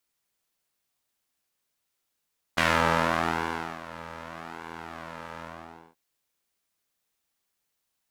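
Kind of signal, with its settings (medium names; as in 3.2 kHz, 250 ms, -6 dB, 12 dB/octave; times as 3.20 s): synth patch with pulse-width modulation E2, detune 29 cents, noise -12.5 dB, filter bandpass, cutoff 760 Hz, Q 1.2, filter envelope 1.5 oct, filter sustain 45%, attack 12 ms, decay 1.20 s, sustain -19.5 dB, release 0.54 s, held 2.84 s, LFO 0.83 Hz, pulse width 18%, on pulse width 5%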